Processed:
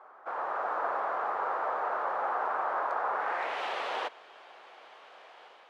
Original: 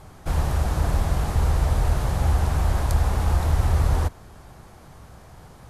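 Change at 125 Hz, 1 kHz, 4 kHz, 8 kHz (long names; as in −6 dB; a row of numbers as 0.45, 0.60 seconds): below −40 dB, +2.5 dB, −6.0 dB, below −20 dB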